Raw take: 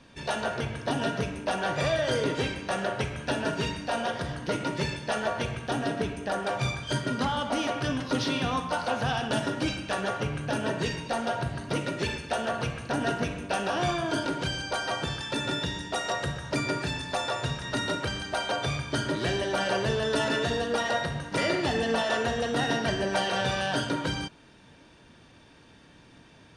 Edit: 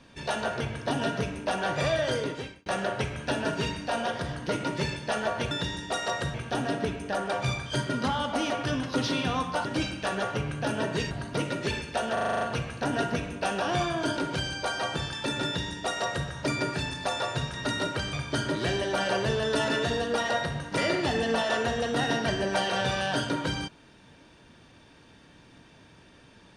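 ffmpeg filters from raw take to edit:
-filter_complex "[0:a]asplit=14[a][b][c][d][e][f][g][h][i][j][k][l][m][n];[a]atrim=end=2.66,asetpts=PTS-STARTPTS,afade=t=out:st=2.03:d=0.63[o];[b]atrim=start=2.66:end=5.512,asetpts=PTS-STARTPTS,afade=t=in:d=0.004:c=hsin[p];[c]atrim=start=15.528:end=16.362[q];[d]atrim=start=5.508:end=8.822[r];[e]atrim=start=9.508:end=10.972[s];[f]atrim=start=11.468:end=12.532[t];[g]atrim=start=12.488:end=12.532[u];[h]atrim=start=12.488:end=12.532[v];[i]atrim=start=12.488:end=12.532[w];[j]atrim=start=12.488:end=12.532[x];[k]atrim=start=12.488:end=12.532[y];[l]atrim=start=12.488:end=12.532[z];[m]atrim=start=12.488:end=18.212[aa];[n]atrim=start=18.728[ab];[o][p]concat=n=2:v=0:a=1[ac];[ac][q]acrossfade=d=0.004:c1=hsin:c2=hsin[ad];[ad][r]acrossfade=d=0.004:c1=hsin:c2=hsin[ae];[ae][s]acrossfade=d=0.004:c1=hsin:c2=hsin[af];[af][t]acrossfade=d=0.004:c1=hsin:c2=hsin[ag];[ag][u]acrossfade=d=0.004:c1=hsin:c2=hsin[ah];[ah][v]acrossfade=d=0.004:c1=hsin:c2=hsin[ai];[ai][w]acrossfade=d=0.004:c1=hsin:c2=hsin[aj];[aj][x]acrossfade=d=0.004:c1=hsin:c2=hsin[ak];[ak][y]acrossfade=d=0.004:c1=hsin:c2=hsin[al];[al][z]acrossfade=d=0.004:c1=hsin:c2=hsin[am];[am][aa]acrossfade=d=0.004:c1=hsin:c2=hsin[an];[an][ab]acrossfade=d=0.004:c1=hsin:c2=hsin"

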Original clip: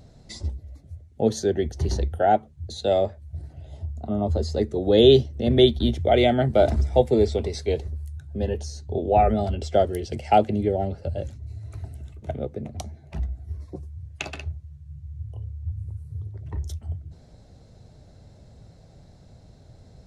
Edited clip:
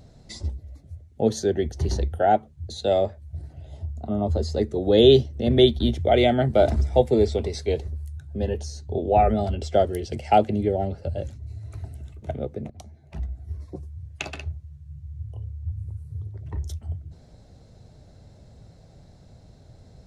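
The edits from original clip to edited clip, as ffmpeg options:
-filter_complex "[0:a]asplit=2[a][b];[a]atrim=end=12.7,asetpts=PTS-STARTPTS,afade=t=out:st=12.696:d=0.004:c=hsin:silence=0.237137[c];[b]atrim=start=12.7,asetpts=PTS-STARTPTS,afade=t=in:d=0.78:silence=0.237137[d];[c][d]concat=n=2:v=0:a=1"

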